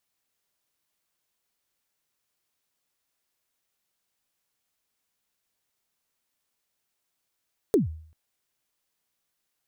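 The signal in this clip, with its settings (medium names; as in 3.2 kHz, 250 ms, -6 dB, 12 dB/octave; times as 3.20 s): kick drum length 0.39 s, from 470 Hz, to 79 Hz, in 139 ms, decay 0.55 s, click on, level -14 dB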